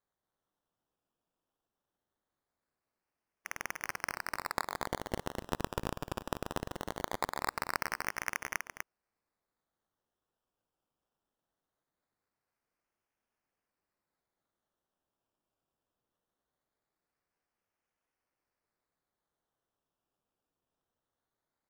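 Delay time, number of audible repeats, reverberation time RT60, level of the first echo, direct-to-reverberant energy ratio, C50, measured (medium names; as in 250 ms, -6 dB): 247 ms, 1, no reverb, -5.0 dB, no reverb, no reverb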